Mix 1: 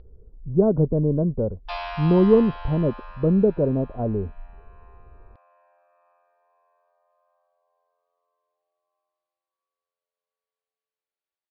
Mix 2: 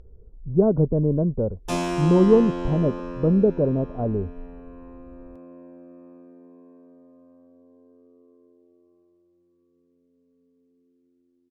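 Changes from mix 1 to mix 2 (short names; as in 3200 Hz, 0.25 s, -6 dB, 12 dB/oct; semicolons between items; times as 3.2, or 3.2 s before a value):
background: remove elliptic high-pass 710 Hz, stop band 60 dB; master: remove steep low-pass 4900 Hz 96 dB/oct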